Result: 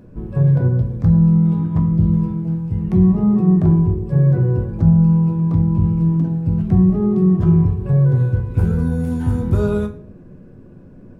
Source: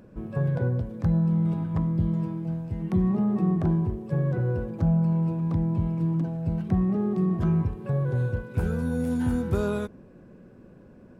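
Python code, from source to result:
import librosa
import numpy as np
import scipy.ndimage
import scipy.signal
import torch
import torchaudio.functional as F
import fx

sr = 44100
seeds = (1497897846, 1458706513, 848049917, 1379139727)

y = fx.low_shelf(x, sr, hz=340.0, db=9.0)
y = fx.room_shoebox(y, sr, seeds[0], volume_m3=52.0, walls='mixed', distance_m=0.4)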